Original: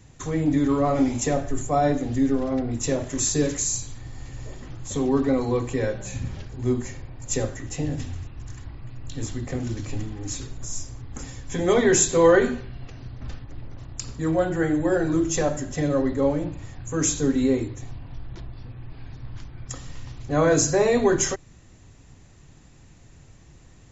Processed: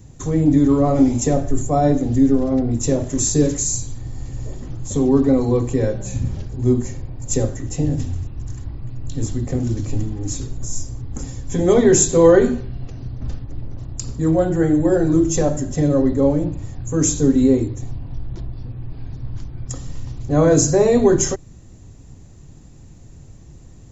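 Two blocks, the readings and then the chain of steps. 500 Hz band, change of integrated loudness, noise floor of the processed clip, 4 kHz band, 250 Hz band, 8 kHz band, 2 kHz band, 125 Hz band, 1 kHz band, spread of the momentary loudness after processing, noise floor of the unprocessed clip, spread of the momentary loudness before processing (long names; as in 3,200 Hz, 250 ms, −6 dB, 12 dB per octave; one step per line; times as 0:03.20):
+5.0 dB, +5.5 dB, −42 dBFS, +0.5 dB, +7.0 dB, can't be measured, −3.0 dB, +8.0 dB, +1.5 dB, 18 LU, −50 dBFS, 21 LU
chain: parametric band 2,100 Hz −12 dB 3 octaves
level +8.5 dB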